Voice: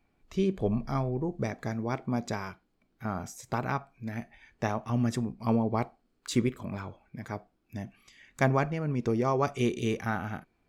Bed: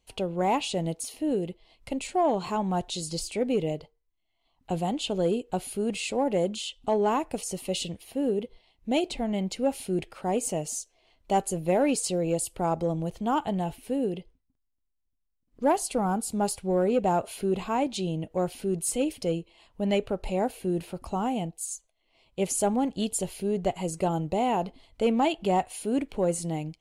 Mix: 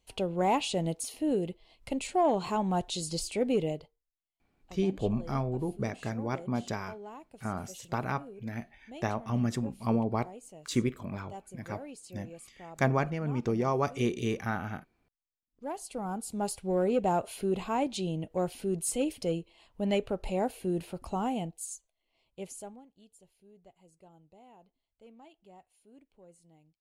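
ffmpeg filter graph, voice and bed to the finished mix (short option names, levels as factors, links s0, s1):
-filter_complex "[0:a]adelay=4400,volume=0.841[s0];[1:a]volume=6.31,afade=t=out:st=3.59:d=0.61:silence=0.112202,afade=t=in:st=15.48:d=1.36:silence=0.133352,afade=t=out:st=21.28:d=1.56:silence=0.0421697[s1];[s0][s1]amix=inputs=2:normalize=0"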